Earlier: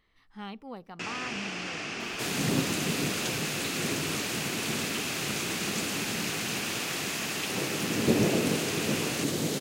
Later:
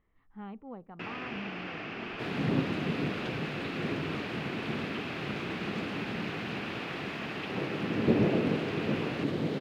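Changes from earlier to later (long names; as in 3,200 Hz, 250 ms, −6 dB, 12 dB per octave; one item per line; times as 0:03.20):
speech: add head-to-tape spacing loss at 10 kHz 32 dB
master: add high-frequency loss of the air 390 metres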